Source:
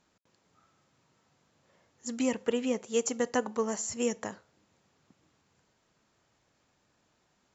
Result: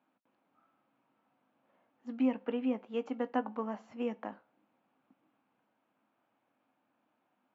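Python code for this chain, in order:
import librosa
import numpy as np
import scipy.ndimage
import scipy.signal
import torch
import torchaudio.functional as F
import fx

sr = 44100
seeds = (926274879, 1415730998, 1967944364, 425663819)

y = fx.cabinet(x, sr, low_hz=160.0, low_slope=24, high_hz=2600.0, hz=(160.0, 270.0, 410.0, 770.0, 1900.0), db=(-10, 6, -8, 4, -7))
y = fx.doubler(y, sr, ms=19.0, db=-14)
y = y * librosa.db_to_amplitude(-4.0)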